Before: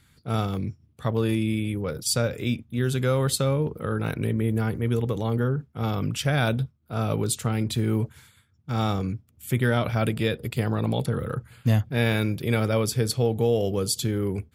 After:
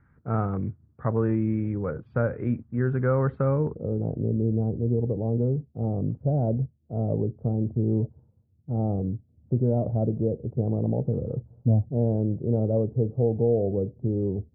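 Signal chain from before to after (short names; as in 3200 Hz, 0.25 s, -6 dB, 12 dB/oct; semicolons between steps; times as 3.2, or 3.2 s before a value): steep low-pass 1700 Hz 36 dB/oct, from 3.74 s 690 Hz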